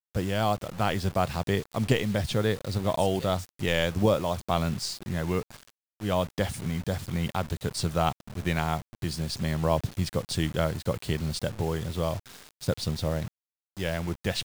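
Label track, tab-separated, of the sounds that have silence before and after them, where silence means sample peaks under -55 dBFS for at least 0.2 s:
6.000000	13.280000	sound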